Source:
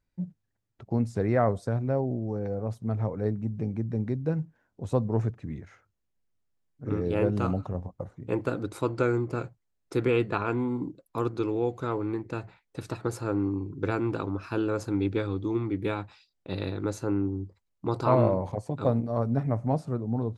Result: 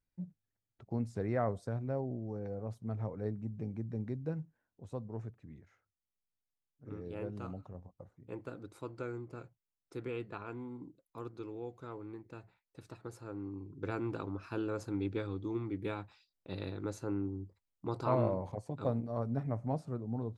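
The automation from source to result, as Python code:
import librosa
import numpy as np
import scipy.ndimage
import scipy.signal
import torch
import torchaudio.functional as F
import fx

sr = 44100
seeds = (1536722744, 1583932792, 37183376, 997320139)

y = fx.gain(x, sr, db=fx.line((4.25, -9.0), (4.92, -15.5), (13.35, -15.5), (13.98, -8.5)))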